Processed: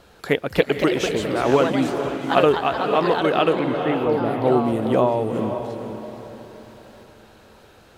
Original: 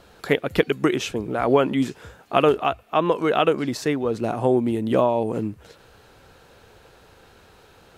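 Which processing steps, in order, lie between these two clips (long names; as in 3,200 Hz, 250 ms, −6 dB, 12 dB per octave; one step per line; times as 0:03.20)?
0:03.59–0:04.52: low-pass filter 2,300 Hz 24 dB per octave
on a send: feedback delay with all-pass diffusion 486 ms, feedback 41%, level −8 dB
on the sum: delay with pitch and tempo change per echo 326 ms, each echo +3 semitones, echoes 2, each echo −6 dB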